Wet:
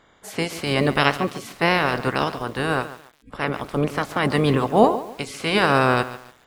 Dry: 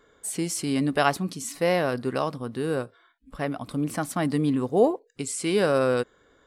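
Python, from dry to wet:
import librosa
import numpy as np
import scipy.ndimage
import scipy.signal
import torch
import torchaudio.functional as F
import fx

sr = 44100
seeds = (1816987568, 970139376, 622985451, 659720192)

y = fx.spec_clip(x, sr, under_db=22)
y = fx.lowpass(y, sr, hz=1700.0, slope=6)
y = fx.echo_crushed(y, sr, ms=142, feedback_pct=35, bits=7, wet_db=-14)
y = y * librosa.db_to_amplitude(6.0)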